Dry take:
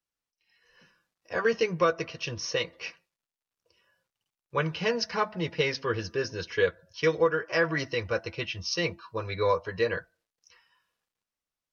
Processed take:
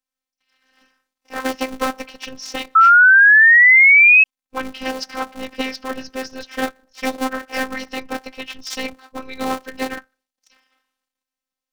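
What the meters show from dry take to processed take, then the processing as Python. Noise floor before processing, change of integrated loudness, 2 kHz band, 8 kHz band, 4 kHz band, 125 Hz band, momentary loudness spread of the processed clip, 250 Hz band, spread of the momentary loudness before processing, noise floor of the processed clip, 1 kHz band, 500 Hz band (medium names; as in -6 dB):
under -85 dBFS, +19.0 dB, +21.5 dB, no reading, +3.5 dB, under -10 dB, 22 LU, +7.5 dB, 9 LU, under -85 dBFS, +14.5 dB, -2.5 dB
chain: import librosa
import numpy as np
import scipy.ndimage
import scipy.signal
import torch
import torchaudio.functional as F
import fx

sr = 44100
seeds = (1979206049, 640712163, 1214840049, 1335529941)

y = fx.cycle_switch(x, sr, every=3, mode='inverted')
y = fx.robotise(y, sr, hz=261.0)
y = fx.spec_paint(y, sr, seeds[0], shape='rise', start_s=2.75, length_s=1.49, low_hz=1300.0, high_hz=2600.0, level_db=-13.0)
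y = y * librosa.db_to_amplitude(4.0)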